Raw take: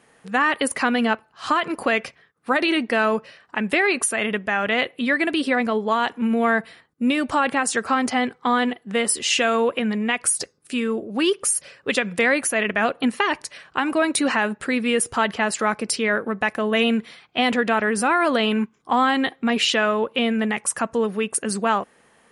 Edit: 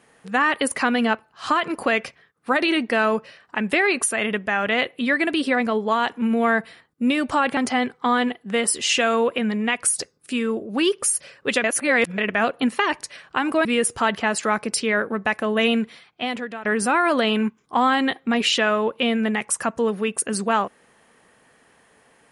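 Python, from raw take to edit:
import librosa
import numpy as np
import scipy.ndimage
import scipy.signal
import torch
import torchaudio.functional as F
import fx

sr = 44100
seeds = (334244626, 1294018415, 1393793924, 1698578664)

y = fx.edit(x, sr, fx.cut(start_s=7.57, length_s=0.41),
    fx.reverse_span(start_s=12.05, length_s=0.54),
    fx.cut(start_s=14.06, length_s=0.75),
    fx.fade_out_to(start_s=16.85, length_s=0.96, floor_db=-17.0), tone=tone)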